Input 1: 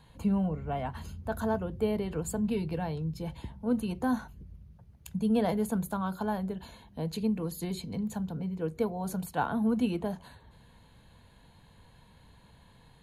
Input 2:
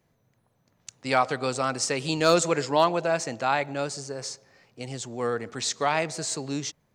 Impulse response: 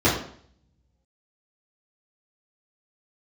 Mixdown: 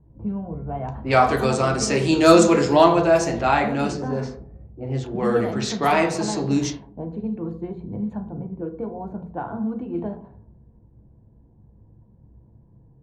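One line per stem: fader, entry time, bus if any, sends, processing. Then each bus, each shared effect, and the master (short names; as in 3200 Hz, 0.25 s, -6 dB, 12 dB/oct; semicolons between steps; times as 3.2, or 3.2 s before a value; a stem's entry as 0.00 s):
+3.0 dB, 0.00 s, send -23 dB, compressor 16:1, threshold -30 dBFS, peak gain reduction 9 dB
+1.0 dB, 0.00 s, send -17.5 dB, dry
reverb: on, RT60 0.55 s, pre-delay 3 ms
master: low-pass opened by the level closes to 360 Hz, open at -17 dBFS; mismatched tape noise reduction decoder only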